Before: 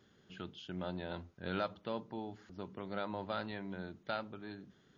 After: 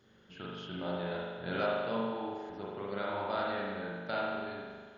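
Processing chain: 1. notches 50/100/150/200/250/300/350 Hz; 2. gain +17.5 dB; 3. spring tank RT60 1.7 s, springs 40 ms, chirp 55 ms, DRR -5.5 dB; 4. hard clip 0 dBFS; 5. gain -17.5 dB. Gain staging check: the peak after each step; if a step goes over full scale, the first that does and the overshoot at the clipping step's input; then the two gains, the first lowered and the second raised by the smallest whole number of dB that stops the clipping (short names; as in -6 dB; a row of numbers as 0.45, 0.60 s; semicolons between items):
-22.5, -5.0, -2.5, -2.5, -20.0 dBFS; no overload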